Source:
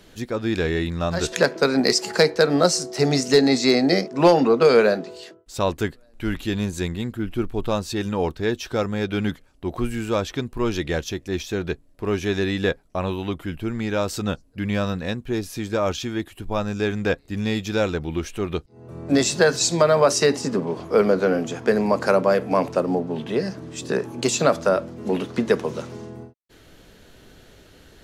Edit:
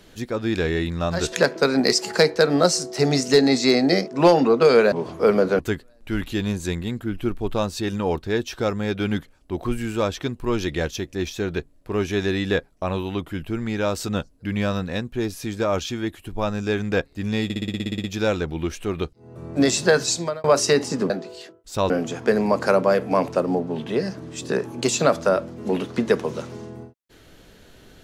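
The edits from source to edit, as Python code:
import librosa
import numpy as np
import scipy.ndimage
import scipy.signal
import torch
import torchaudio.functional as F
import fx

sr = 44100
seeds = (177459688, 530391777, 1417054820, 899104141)

y = fx.edit(x, sr, fx.swap(start_s=4.92, length_s=0.8, other_s=20.63, other_length_s=0.67),
    fx.stutter(start_s=17.57, slice_s=0.06, count=11),
    fx.fade_out_span(start_s=19.55, length_s=0.42), tone=tone)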